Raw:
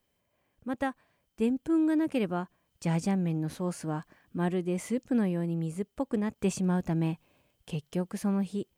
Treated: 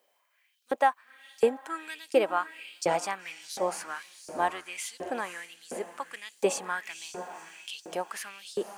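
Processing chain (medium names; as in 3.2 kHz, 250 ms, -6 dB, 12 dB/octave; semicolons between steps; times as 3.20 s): 3.75–4.80 s: octave divider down 1 oct, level +1 dB; echo that smears into a reverb 503 ms, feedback 46%, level -11 dB; LFO high-pass saw up 1.4 Hz 480–5300 Hz; trim +5 dB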